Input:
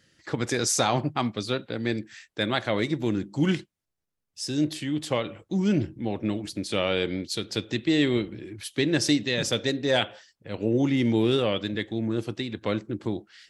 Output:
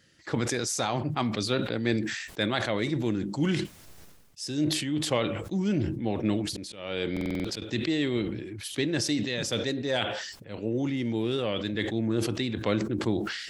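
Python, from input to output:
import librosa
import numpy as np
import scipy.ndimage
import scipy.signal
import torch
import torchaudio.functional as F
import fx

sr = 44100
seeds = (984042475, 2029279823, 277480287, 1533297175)

y = fx.auto_swell(x, sr, attack_ms=535.0, at=(6.47, 7.62))
y = fx.rider(y, sr, range_db=4, speed_s=0.5)
y = fx.buffer_glitch(y, sr, at_s=(7.12,), block=2048, repeats=6)
y = fx.sustainer(y, sr, db_per_s=44.0)
y = y * 10.0 ** (-3.0 / 20.0)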